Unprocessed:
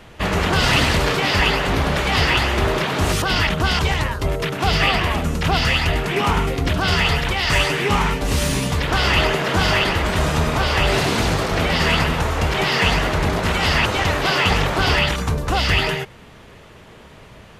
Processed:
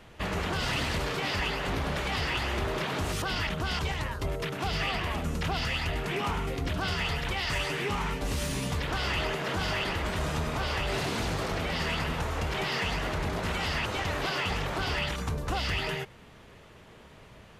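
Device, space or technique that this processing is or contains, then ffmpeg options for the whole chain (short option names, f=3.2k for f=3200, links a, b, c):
soft clipper into limiter: -af "asoftclip=type=tanh:threshold=-8dB,alimiter=limit=-13.5dB:level=0:latency=1:release=235,volume=-8.5dB"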